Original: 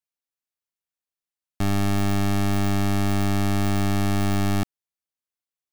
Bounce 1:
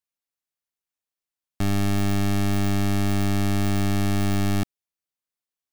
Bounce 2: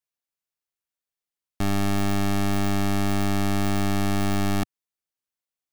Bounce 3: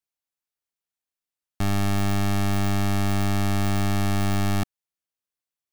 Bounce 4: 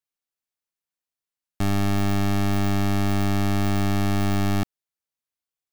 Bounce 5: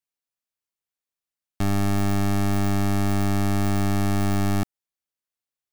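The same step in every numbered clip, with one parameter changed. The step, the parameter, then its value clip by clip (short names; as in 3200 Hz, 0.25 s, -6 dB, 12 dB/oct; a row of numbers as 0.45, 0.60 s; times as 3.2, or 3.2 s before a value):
dynamic EQ, frequency: 970, 110, 320, 9200, 3200 Hz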